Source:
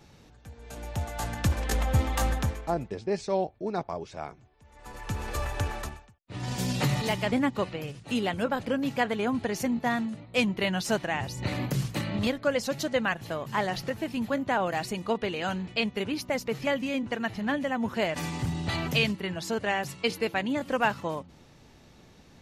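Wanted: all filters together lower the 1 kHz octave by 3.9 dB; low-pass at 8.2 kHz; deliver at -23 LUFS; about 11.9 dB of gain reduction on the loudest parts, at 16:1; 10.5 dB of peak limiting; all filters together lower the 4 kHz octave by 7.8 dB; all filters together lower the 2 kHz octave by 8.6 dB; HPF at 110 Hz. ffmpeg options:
-af "highpass=110,lowpass=8200,equalizer=f=1000:t=o:g=-3.5,equalizer=f=2000:t=o:g=-8,equalizer=f=4000:t=o:g=-7,acompressor=threshold=0.02:ratio=16,volume=9.44,alimiter=limit=0.2:level=0:latency=1"

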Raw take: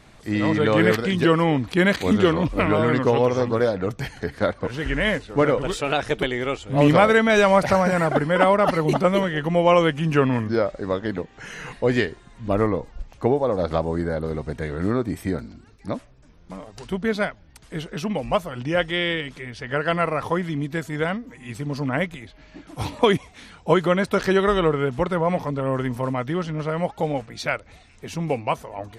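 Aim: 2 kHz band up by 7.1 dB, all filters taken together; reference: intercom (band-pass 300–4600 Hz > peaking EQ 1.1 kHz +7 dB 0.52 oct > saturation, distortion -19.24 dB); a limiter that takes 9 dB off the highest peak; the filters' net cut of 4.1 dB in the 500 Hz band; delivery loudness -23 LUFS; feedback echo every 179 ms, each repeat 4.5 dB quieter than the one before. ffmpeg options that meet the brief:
-af "equalizer=f=500:t=o:g=-5,equalizer=f=2000:t=o:g=8,alimiter=limit=0.316:level=0:latency=1,highpass=300,lowpass=4600,equalizer=f=1100:t=o:w=0.52:g=7,aecho=1:1:179|358|537|716|895|1074|1253|1432|1611:0.596|0.357|0.214|0.129|0.0772|0.0463|0.0278|0.0167|0.01,asoftclip=threshold=0.335,volume=0.891"

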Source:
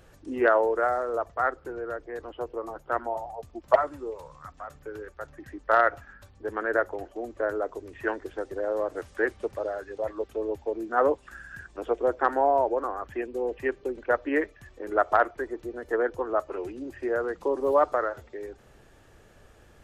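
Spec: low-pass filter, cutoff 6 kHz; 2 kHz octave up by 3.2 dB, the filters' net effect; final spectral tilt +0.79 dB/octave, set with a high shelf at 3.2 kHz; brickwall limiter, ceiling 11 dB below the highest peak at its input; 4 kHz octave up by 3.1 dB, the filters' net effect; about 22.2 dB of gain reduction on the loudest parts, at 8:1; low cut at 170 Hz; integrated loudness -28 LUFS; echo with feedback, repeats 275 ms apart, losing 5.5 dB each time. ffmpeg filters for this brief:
-af "highpass=170,lowpass=6000,equalizer=f=2000:t=o:g=5,highshelf=f=3200:g=-5.5,equalizer=f=4000:t=o:g=6.5,acompressor=threshold=0.0141:ratio=8,alimiter=level_in=2.51:limit=0.0631:level=0:latency=1,volume=0.398,aecho=1:1:275|550|825|1100|1375|1650|1925:0.531|0.281|0.149|0.079|0.0419|0.0222|0.0118,volume=5.01"

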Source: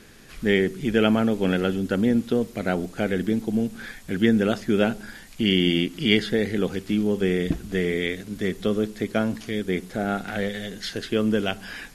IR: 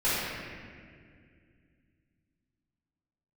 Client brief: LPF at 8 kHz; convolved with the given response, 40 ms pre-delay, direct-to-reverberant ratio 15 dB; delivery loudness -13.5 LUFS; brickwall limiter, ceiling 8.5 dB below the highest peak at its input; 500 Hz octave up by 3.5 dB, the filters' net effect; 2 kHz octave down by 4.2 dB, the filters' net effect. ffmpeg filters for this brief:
-filter_complex "[0:a]lowpass=8000,equalizer=f=500:t=o:g=4.5,equalizer=f=2000:t=o:g=-5.5,alimiter=limit=0.211:level=0:latency=1,asplit=2[s0][s1];[1:a]atrim=start_sample=2205,adelay=40[s2];[s1][s2]afir=irnorm=-1:irlink=0,volume=0.0376[s3];[s0][s3]amix=inputs=2:normalize=0,volume=3.76"

